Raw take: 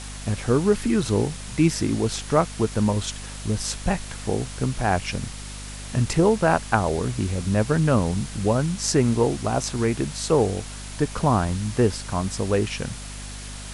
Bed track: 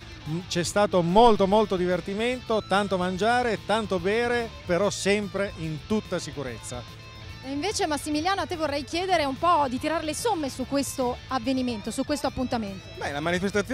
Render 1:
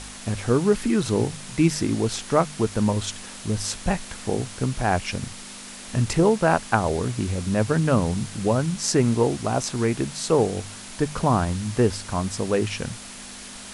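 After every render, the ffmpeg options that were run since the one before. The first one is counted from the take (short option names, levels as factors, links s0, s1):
-af "bandreject=f=50:t=h:w=4,bandreject=f=100:t=h:w=4,bandreject=f=150:t=h:w=4"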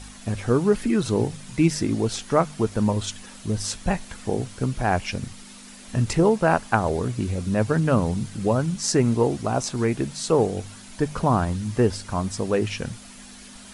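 -af "afftdn=nr=8:nf=-40"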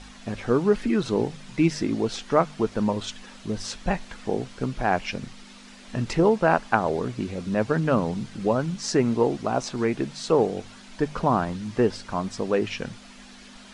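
-af "lowpass=5000,equalizer=f=87:t=o:w=1.1:g=-12.5"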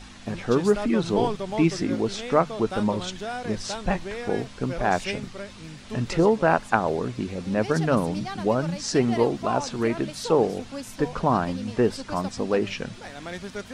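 -filter_complex "[1:a]volume=0.316[s0];[0:a][s0]amix=inputs=2:normalize=0"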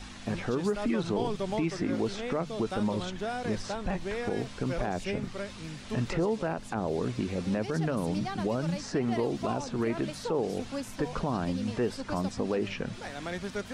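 -filter_complex "[0:a]acrossover=split=560|2300[s0][s1][s2];[s0]acompressor=threshold=0.0501:ratio=4[s3];[s1]acompressor=threshold=0.0178:ratio=4[s4];[s2]acompressor=threshold=0.00562:ratio=4[s5];[s3][s4][s5]amix=inputs=3:normalize=0,alimiter=limit=0.1:level=0:latency=1:release=29"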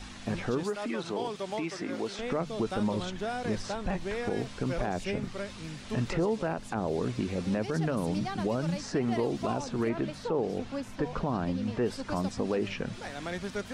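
-filter_complex "[0:a]asettb=1/sr,asplit=3[s0][s1][s2];[s0]atrim=end=0.634[s3];[s1]atrim=start=0.63:end=2.19,asetpts=PTS-STARTPTS,afade=t=in:d=0.004:c=qsin,afade=t=out:st=1.556:d=0.004:c=qsin,highpass=f=440:p=1[s4];[s2]atrim=start=2.186[s5];[s3][s4]acrossfade=d=0.004:c1=hsin:c2=qsin[s6];[s6][s5]acrossfade=d=0.004:c1=qsin:c2=hsin,asettb=1/sr,asplit=3[s7][s8][s9];[s7]atrim=end=9.894[s10];[s8]atrim=start=9.89:end=11.86,asetpts=PTS-STARTPTS,afade=t=in:d=0.004:c=qsin,afade=t=out:st=1.966:d=0.004:c=qsin,lowpass=f=3100:p=1[s11];[s9]atrim=start=11.856[s12];[s10][s11]acrossfade=d=0.004:c1=hsin:c2=qsin[s13];[s13][s12]acrossfade=d=0.004:c1=qsin:c2=hsin"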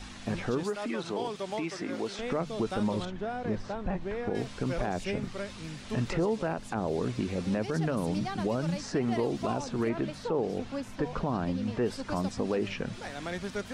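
-filter_complex "[0:a]asettb=1/sr,asplit=3[s0][s1][s2];[s0]atrim=end=3.054[s3];[s1]atrim=start=3.05:end=4.35,asetpts=PTS-STARTPTS,afade=t=in:d=0.004:c=qsin,afade=t=out:st=1.296:d=0.004:c=qsin,lowpass=f=1400:p=1[s4];[s2]atrim=start=4.346[s5];[s3][s4]acrossfade=d=0.004:c1=hsin:c2=qsin[s6];[s6][s5]acrossfade=d=0.004:c1=qsin:c2=hsin"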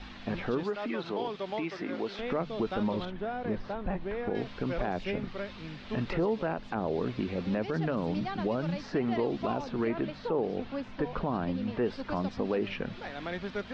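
-af "lowpass=f=4200:w=0.5412,lowpass=f=4200:w=1.3066,equalizer=f=110:t=o:w=1:g=-4.5"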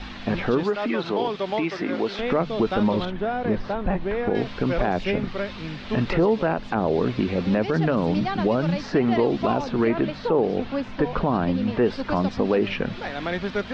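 -af "volume=2.82"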